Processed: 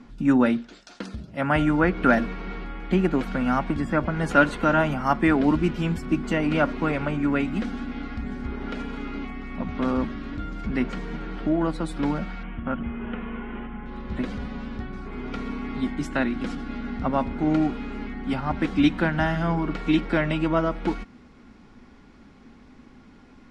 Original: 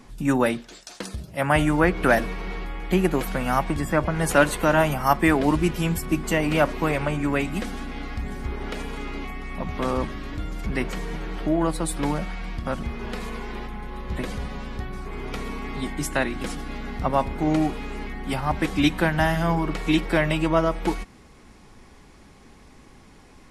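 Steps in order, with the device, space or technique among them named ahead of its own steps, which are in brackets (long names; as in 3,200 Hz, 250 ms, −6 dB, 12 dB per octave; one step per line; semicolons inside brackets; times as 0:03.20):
0:12.43–0:13.86: elliptic low-pass filter 3,100 Hz, stop band 40 dB
inside a cardboard box (low-pass filter 4,600 Hz 12 dB per octave; hollow resonant body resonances 240/1,400 Hz, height 10 dB, ringing for 40 ms)
level −3.5 dB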